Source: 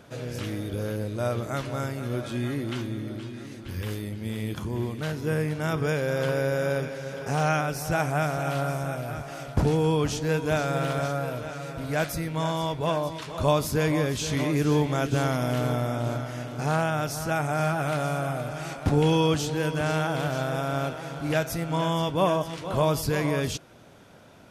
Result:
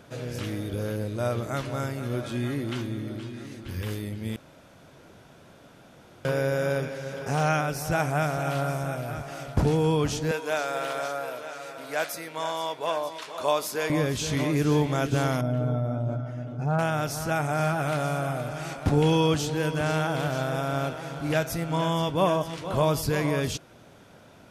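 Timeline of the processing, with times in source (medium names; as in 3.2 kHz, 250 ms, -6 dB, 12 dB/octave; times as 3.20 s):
4.36–6.25 s: room tone
10.31–13.90 s: high-pass 470 Hz
15.41–16.79 s: spectral contrast enhancement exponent 1.6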